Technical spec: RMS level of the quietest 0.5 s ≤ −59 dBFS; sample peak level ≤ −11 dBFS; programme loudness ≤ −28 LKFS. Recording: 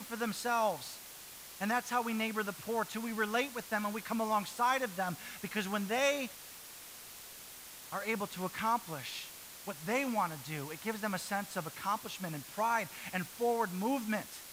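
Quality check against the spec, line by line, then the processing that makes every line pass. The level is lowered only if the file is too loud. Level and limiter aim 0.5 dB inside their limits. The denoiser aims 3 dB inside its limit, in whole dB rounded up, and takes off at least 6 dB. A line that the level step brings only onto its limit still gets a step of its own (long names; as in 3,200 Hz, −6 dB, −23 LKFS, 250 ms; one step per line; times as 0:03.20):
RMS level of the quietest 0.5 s −50 dBFS: out of spec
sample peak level −18.5 dBFS: in spec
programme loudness −35.5 LKFS: in spec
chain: broadband denoise 12 dB, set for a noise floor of −50 dBFS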